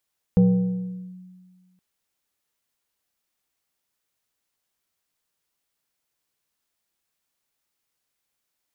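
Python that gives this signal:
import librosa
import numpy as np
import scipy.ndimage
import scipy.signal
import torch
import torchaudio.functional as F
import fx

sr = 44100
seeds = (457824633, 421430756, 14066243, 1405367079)

y = fx.fm2(sr, length_s=1.42, level_db=-11.0, carrier_hz=183.0, ratio=1.64, index=0.53, index_s=0.79, decay_s=1.7, shape='linear')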